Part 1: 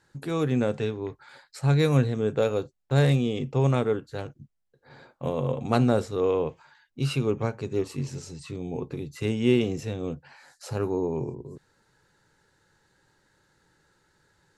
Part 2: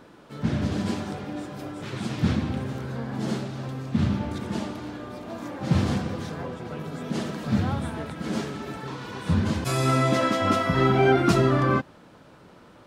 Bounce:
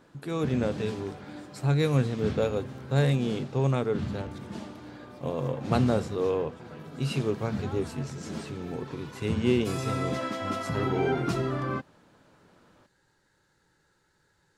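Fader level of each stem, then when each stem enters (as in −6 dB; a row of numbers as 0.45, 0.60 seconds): −3.0, −9.0 decibels; 0.00, 0.00 seconds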